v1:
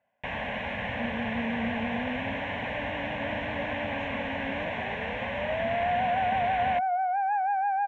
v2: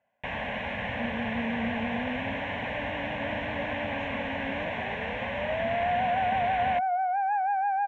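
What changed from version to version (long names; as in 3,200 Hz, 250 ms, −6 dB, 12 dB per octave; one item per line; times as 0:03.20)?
nothing changed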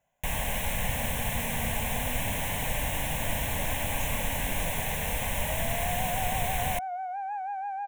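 second sound −6.5 dB
master: remove loudspeaker in its box 110–3,000 Hz, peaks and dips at 150 Hz −10 dB, 230 Hz +6 dB, 580 Hz +3 dB, 1,700 Hz +5 dB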